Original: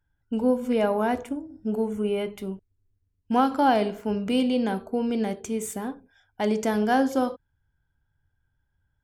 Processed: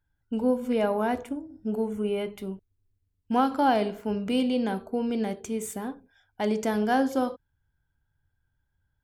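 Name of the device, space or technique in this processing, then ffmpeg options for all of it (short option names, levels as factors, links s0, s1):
exciter from parts: -filter_complex "[0:a]asplit=2[s0][s1];[s1]highpass=f=3300:w=0.5412,highpass=f=3300:w=1.3066,asoftclip=type=tanh:threshold=0.0112,highpass=f=4200:w=0.5412,highpass=f=4200:w=1.3066,volume=0.2[s2];[s0][s2]amix=inputs=2:normalize=0,volume=0.794"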